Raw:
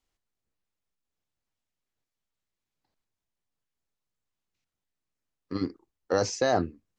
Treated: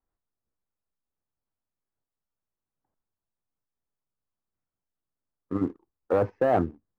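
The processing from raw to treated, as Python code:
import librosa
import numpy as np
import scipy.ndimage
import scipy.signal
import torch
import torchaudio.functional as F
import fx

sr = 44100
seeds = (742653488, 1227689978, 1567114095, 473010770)

y = scipy.signal.sosfilt(scipy.signal.butter(4, 1500.0, 'lowpass', fs=sr, output='sos'), x)
y = fx.leveller(y, sr, passes=1)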